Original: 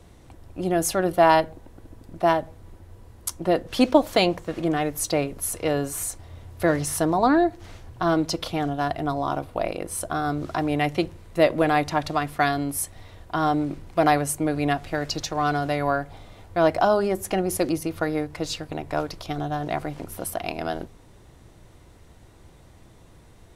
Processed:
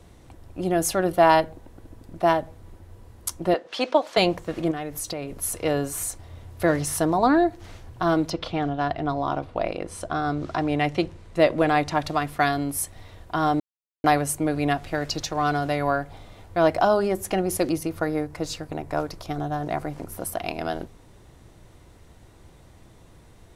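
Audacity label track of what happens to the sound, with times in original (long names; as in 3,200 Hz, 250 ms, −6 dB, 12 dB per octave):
3.540000	4.170000	band-pass filter 500–5,500 Hz
4.710000	5.340000	downward compressor, threshold −27 dBFS
8.290000	11.930000	low-pass filter 3,900 Hz → 10,000 Hz
13.600000	14.040000	silence
17.870000	20.340000	parametric band 3,200 Hz −5.5 dB 1.1 octaves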